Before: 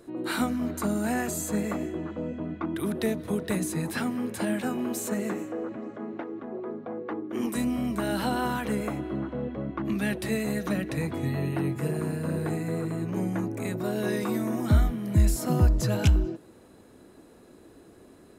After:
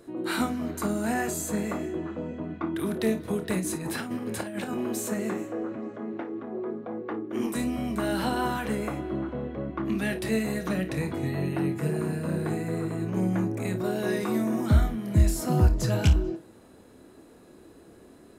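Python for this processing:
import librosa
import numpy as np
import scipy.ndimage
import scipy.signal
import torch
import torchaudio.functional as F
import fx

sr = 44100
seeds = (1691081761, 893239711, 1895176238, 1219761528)

y = fx.over_compress(x, sr, threshold_db=-31.0, ratio=-0.5, at=(3.58, 4.74))
y = fx.room_early_taps(y, sr, ms=(27, 54), db=(-10.0, -13.0))
y = fx.doppler_dist(y, sr, depth_ms=0.1)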